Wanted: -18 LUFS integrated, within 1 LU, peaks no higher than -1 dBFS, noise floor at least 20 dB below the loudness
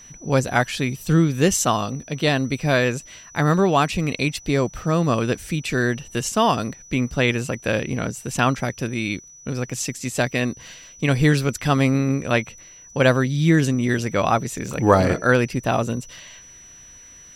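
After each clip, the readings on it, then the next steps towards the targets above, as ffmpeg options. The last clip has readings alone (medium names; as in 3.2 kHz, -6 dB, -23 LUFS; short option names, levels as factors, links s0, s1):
steady tone 5.9 kHz; tone level -43 dBFS; loudness -21.5 LUFS; peak level -1.5 dBFS; loudness target -18.0 LUFS
-> -af "bandreject=f=5900:w=30"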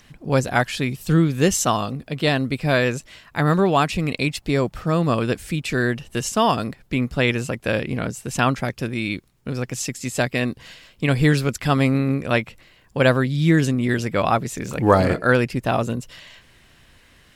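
steady tone not found; loudness -21.5 LUFS; peak level -1.5 dBFS; loudness target -18.0 LUFS
-> -af "volume=1.5,alimiter=limit=0.891:level=0:latency=1"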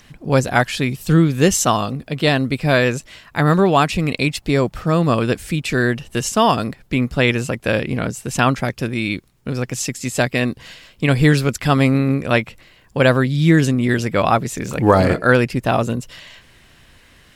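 loudness -18.0 LUFS; peak level -1.0 dBFS; noise floor -51 dBFS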